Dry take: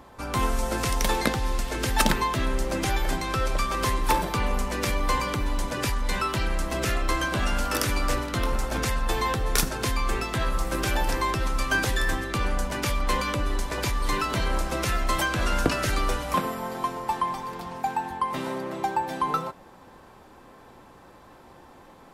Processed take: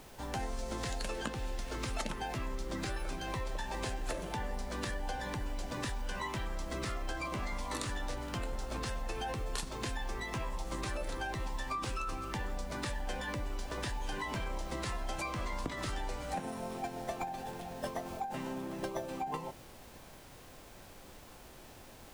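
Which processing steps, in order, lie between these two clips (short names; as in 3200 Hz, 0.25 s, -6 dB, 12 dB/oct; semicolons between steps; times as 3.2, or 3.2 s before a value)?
added noise pink -47 dBFS; formant shift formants -5 st; compressor, threshold -26 dBFS, peak gain reduction 10 dB; gain -7.5 dB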